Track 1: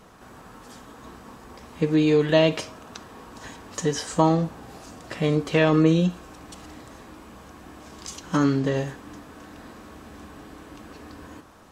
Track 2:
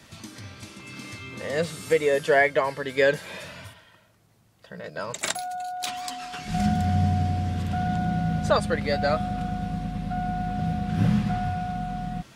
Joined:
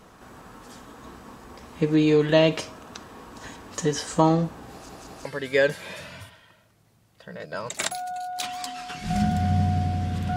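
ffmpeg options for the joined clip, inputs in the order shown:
ffmpeg -i cue0.wav -i cue1.wav -filter_complex "[0:a]apad=whole_dur=10.36,atrim=end=10.36,asplit=3[link_01][link_02][link_03];[link_01]atrim=end=4.892[link_04];[link_02]atrim=start=4.708:end=4.892[link_05];[link_03]atrim=start=4.708:end=4.892[link_06];[1:a]atrim=start=2.688:end=7.8[link_07];[link_04][link_05]acrossfade=duration=0.004:curve1=hsin:curve2=hsin[link_08];[link_08][link_06]acrossfade=duration=0.004:curve1=hsin:curve2=hsin[link_09];[link_09][link_07]acrossfade=duration=0.004:curve1=hsin:curve2=hsin" out.wav

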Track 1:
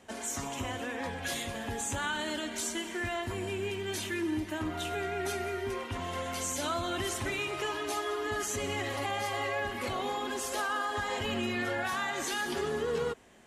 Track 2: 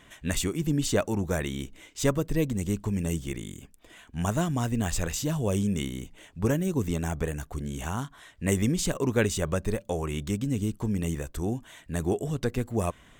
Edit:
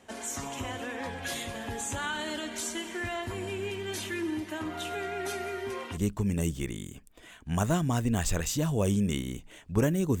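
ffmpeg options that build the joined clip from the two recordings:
ffmpeg -i cue0.wav -i cue1.wav -filter_complex "[0:a]asettb=1/sr,asplit=3[link_01][link_02][link_03];[link_01]atrim=end=4.304[link_04];[link_02]atrim=start=4.3:end=5.98,asetpts=PTS-STARTPTS,afade=type=in:duration=0.004:curve=qsin,afade=type=out:start_time=1.676:duration=0.004:curve=qsin,highpass=frequency=140:poles=1[link_05];[link_03]atrim=start=5.976[link_06];[link_04][link_05]acrossfade=duration=0.004:curve1=hsin:curve2=qsin[link_07];[link_07][link_06]acrossfade=duration=0.004:curve1=qsin:curve2=hsin,apad=whole_dur=10.2,atrim=end=10.2,atrim=end=5.98,asetpts=PTS-STARTPTS[link_08];[1:a]atrim=start=2.59:end=6.87,asetpts=PTS-STARTPTS[link_09];[link_08][link_09]acrossfade=duration=0.06:curve1=tri:curve2=tri" out.wav

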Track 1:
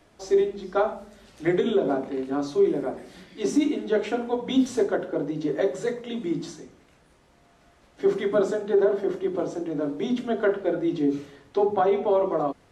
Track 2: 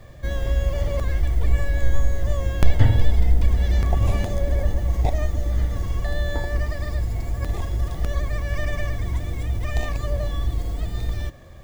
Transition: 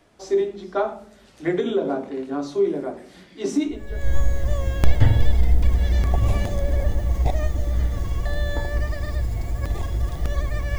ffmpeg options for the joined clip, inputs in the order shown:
ffmpeg -i cue0.wav -i cue1.wav -filter_complex "[0:a]apad=whole_dur=10.78,atrim=end=10.78,atrim=end=4.14,asetpts=PTS-STARTPTS[link_01];[1:a]atrim=start=1.39:end=8.57,asetpts=PTS-STARTPTS[link_02];[link_01][link_02]acrossfade=duration=0.54:curve1=qua:curve2=qua" out.wav

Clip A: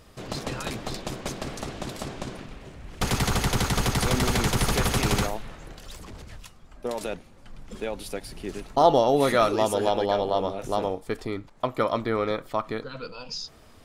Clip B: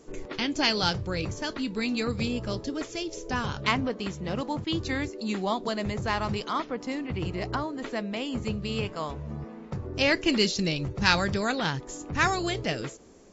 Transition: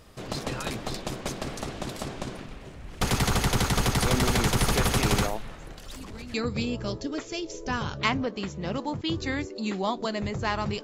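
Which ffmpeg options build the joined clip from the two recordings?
ffmpeg -i cue0.wav -i cue1.wav -filter_complex "[1:a]asplit=2[link_01][link_02];[0:a]apad=whole_dur=10.83,atrim=end=10.83,atrim=end=6.342[link_03];[link_02]atrim=start=1.968:end=6.46[link_04];[link_01]atrim=start=1.54:end=1.97,asetpts=PTS-STARTPTS,volume=-15dB,afade=type=in:duration=0.004:curve=hsin,afade=type=out:start_time=0.426:duration=0.004:curve=hsin,adelay=5910[link_05];[link_03][link_04]acrossfade=duration=0.004:curve1=hsin:curve2=hsin[link_06];[link_06][link_05]amix=inputs=2:normalize=0" out.wav

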